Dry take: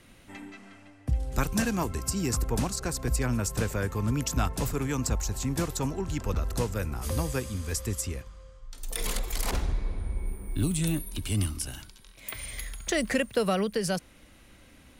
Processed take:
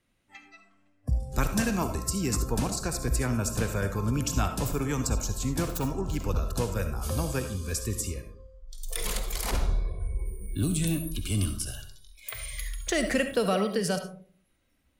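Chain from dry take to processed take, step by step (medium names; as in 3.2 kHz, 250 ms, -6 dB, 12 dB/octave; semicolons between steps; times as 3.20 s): 5.63–6.18 s: self-modulated delay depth 0.13 ms; spectral noise reduction 19 dB; algorithmic reverb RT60 0.5 s, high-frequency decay 0.35×, pre-delay 25 ms, DRR 7.5 dB; endings held to a fixed fall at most 330 dB/s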